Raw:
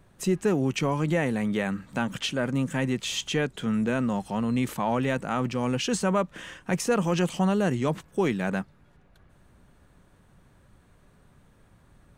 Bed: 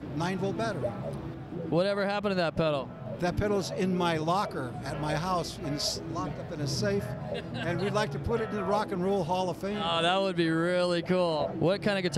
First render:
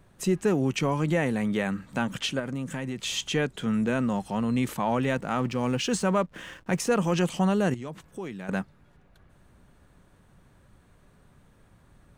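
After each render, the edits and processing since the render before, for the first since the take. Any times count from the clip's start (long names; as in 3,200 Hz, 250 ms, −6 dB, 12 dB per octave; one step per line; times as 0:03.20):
0:02.39–0:03.04: downward compressor, threshold −28 dBFS
0:05.15–0:06.90: slack as between gear wheels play −47.5 dBFS
0:07.74–0:08.49: downward compressor 2 to 1, threshold −42 dBFS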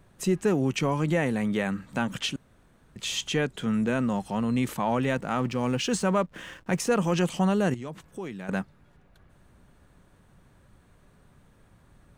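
0:02.36–0:02.96: fill with room tone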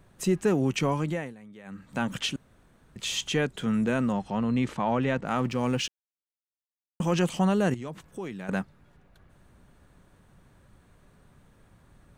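0:00.91–0:02.07: duck −21 dB, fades 0.44 s linear
0:04.12–0:05.26: high-frequency loss of the air 96 metres
0:05.88–0:07.00: silence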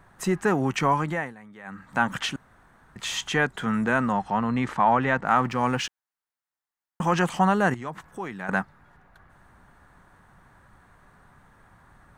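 flat-topped bell 1,200 Hz +10 dB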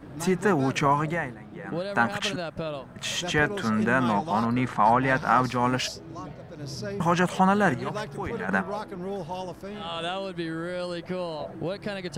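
mix in bed −5 dB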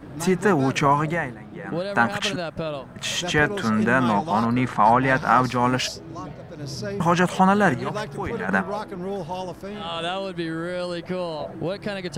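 level +3.5 dB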